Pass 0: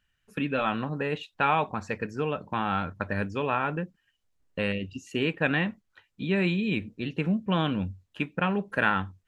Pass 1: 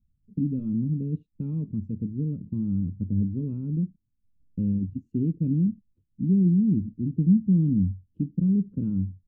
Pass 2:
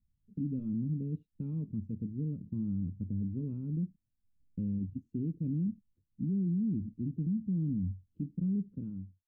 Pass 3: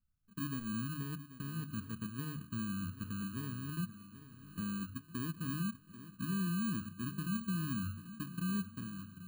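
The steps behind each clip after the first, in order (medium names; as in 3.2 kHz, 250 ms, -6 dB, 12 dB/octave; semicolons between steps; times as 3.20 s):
inverse Chebyshev low-pass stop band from 670 Hz, stop band 50 dB; trim +8 dB
fade out at the end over 0.82 s; peak limiter -20 dBFS, peak gain reduction 8.5 dB; trim -6.5 dB
bit-reversed sample order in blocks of 32 samples; hum notches 50/100/150 Hz; shuffle delay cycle 1313 ms, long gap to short 1.5:1, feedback 35%, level -14.5 dB; trim -4.5 dB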